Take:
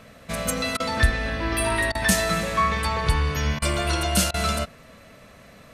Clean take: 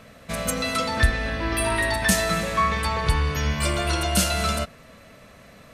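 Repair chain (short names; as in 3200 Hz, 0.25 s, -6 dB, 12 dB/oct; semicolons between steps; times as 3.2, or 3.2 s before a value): interpolate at 0.77/1.92/3.59/4.31, 29 ms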